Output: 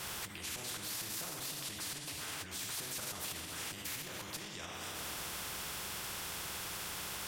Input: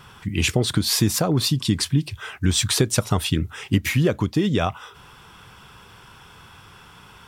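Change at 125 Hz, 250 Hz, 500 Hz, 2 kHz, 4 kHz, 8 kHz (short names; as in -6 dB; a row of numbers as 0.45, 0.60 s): -29.5, -28.0, -23.0, -12.5, -14.5, -11.5 dB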